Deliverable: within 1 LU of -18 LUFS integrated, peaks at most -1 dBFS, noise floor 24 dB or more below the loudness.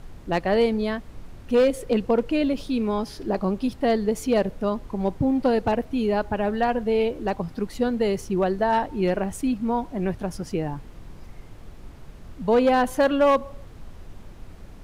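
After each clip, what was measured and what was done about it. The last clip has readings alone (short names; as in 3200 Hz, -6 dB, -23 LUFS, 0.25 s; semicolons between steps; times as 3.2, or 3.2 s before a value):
clipped 0.5%; flat tops at -13.0 dBFS; noise floor -44 dBFS; noise floor target -48 dBFS; loudness -24.0 LUFS; peak -13.0 dBFS; loudness target -18.0 LUFS
-> clip repair -13 dBFS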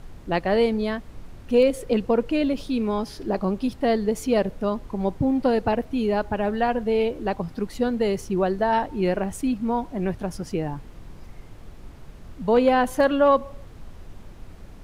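clipped 0.0%; noise floor -44 dBFS; noise floor target -48 dBFS
-> noise print and reduce 6 dB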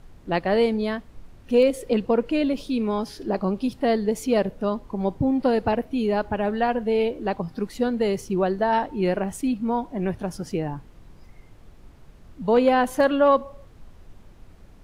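noise floor -49 dBFS; loudness -24.0 LUFS; peak -8.0 dBFS; loudness target -18.0 LUFS
-> gain +6 dB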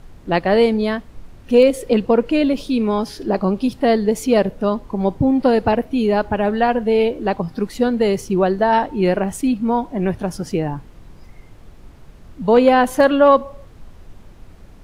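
loudness -18.0 LUFS; peak -2.0 dBFS; noise floor -43 dBFS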